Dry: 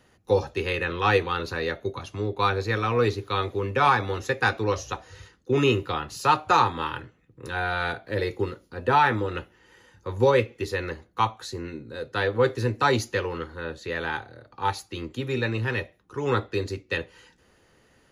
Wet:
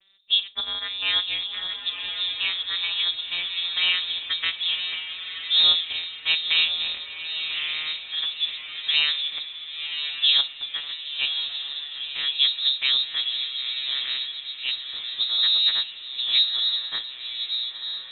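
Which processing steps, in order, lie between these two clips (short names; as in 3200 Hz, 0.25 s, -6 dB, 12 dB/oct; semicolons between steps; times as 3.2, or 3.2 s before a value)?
vocoder on a gliding note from G3, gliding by -9 st; formant shift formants +3 st; diffused feedback echo 1.036 s, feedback 42%, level -6.5 dB; inverted band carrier 3900 Hz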